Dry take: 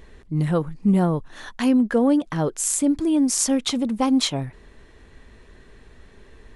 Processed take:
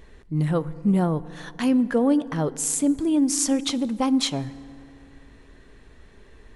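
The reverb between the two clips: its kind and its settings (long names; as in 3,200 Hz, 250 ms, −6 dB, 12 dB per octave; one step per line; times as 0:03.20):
feedback delay network reverb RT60 2.8 s, high-frequency decay 0.45×, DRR 17 dB
level −2 dB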